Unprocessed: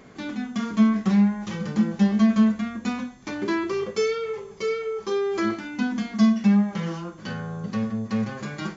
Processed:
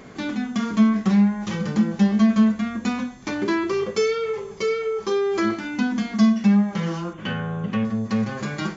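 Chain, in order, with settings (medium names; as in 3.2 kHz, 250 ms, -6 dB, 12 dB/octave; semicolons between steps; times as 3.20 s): in parallel at -1 dB: compression, threshold -30 dBFS, peak gain reduction 15.5 dB; 7.13–7.85 s: on the sum: resonant high shelf 3.7 kHz -7 dB, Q 3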